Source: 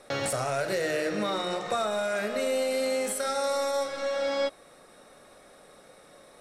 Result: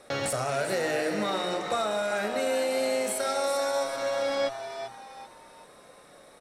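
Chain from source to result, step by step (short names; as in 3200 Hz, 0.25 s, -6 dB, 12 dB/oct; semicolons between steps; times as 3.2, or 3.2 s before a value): frequency-shifting echo 0.389 s, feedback 37%, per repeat +120 Hz, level -9.5 dB; added harmonics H 6 -43 dB, 8 -36 dB, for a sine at -16 dBFS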